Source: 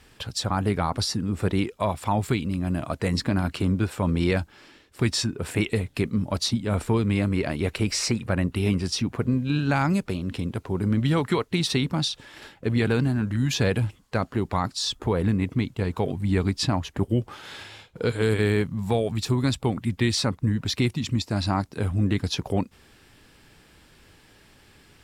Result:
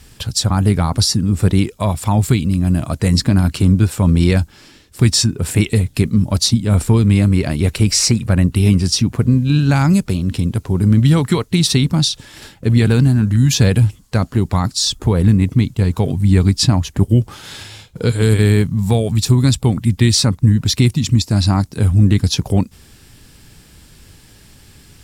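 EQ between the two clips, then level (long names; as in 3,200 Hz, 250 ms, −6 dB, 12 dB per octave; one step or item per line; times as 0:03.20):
bass and treble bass +10 dB, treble +11 dB
+3.5 dB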